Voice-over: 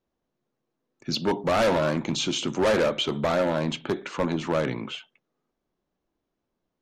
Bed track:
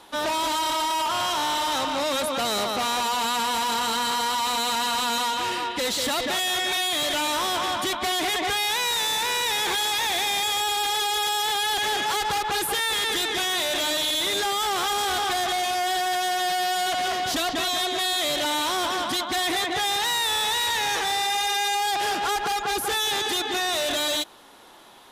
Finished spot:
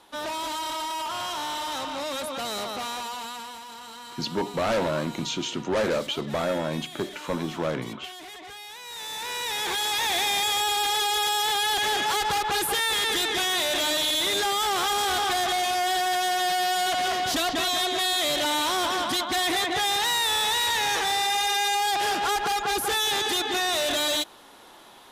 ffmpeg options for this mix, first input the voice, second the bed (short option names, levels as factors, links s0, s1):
-filter_complex "[0:a]adelay=3100,volume=0.708[s0];[1:a]volume=3.55,afade=t=out:st=2.72:d=0.9:silence=0.281838,afade=t=in:st=8.83:d=1.34:silence=0.141254[s1];[s0][s1]amix=inputs=2:normalize=0"